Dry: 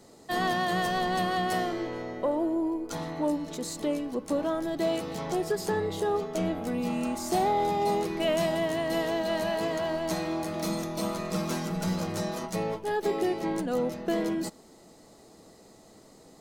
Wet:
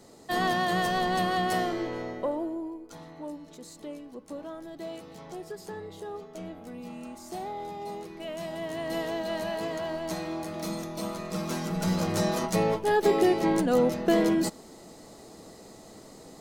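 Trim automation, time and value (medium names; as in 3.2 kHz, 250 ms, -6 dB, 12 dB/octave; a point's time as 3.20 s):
2.07 s +1 dB
2.89 s -11 dB
8.33 s -11 dB
8.90 s -3 dB
11.29 s -3 dB
12.27 s +5.5 dB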